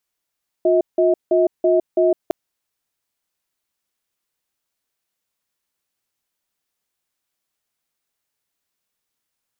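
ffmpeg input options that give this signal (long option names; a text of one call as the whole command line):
ffmpeg -f lavfi -i "aevalsrc='0.178*(sin(2*PI*358*t)+sin(2*PI*640*t))*clip(min(mod(t,0.33),0.16-mod(t,0.33))/0.005,0,1)':duration=1.66:sample_rate=44100" out.wav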